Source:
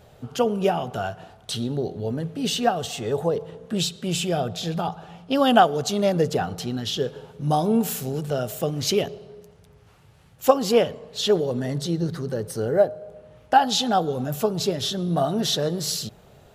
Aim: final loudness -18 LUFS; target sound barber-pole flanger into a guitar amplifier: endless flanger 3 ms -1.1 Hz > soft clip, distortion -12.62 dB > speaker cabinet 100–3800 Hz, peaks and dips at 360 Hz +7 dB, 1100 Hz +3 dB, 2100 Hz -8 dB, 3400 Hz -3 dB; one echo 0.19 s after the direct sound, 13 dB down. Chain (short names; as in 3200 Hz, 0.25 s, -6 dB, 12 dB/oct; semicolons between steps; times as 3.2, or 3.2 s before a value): echo 0.19 s -13 dB; endless flanger 3 ms -1.1 Hz; soft clip -17.5 dBFS; speaker cabinet 100–3800 Hz, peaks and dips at 360 Hz +7 dB, 1100 Hz +3 dB, 2100 Hz -8 dB, 3400 Hz -3 dB; gain +10 dB